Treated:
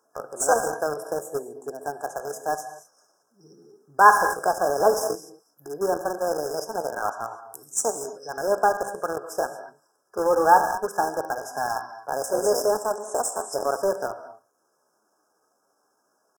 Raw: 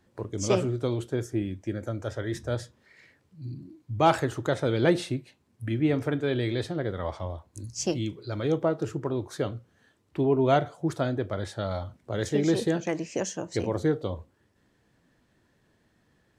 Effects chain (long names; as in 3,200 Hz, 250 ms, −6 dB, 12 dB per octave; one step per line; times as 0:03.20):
high-pass filter 540 Hz 12 dB per octave
reverb whose tail is shaped and stops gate 260 ms flat, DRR 6 dB
in parallel at −6 dB: bit reduction 5 bits
on the sum: pitch shifter +4 semitones
brick-wall band-stop 1,700–5,000 Hz
level +5 dB